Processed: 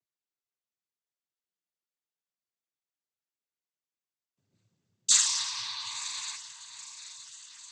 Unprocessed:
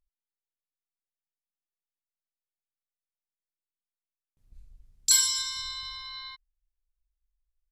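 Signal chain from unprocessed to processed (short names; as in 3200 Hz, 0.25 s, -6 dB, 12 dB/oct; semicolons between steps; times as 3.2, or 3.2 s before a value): diffused feedback echo 0.965 s, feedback 53%, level -14 dB; noise vocoder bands 16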